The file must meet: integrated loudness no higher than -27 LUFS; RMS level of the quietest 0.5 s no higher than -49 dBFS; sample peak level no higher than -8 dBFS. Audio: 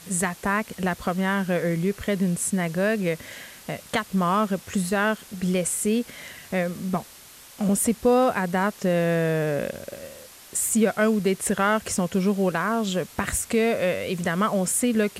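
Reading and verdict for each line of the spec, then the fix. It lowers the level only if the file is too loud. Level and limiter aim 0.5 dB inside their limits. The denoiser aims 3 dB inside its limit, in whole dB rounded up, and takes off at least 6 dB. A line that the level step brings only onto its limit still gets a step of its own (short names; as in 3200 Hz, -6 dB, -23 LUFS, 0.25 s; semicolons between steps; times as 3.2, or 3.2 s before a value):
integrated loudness -24.0 LUFS: fail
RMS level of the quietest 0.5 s -47 dBFS: fail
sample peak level -9.0 dBFS: OK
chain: gain -3.5 dB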